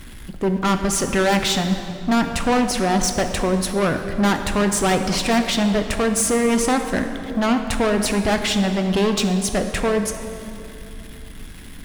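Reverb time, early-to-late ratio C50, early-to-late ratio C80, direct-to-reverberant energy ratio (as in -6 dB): 2.7 s, 7.0 dB, 8.0 dB, 5.5 dB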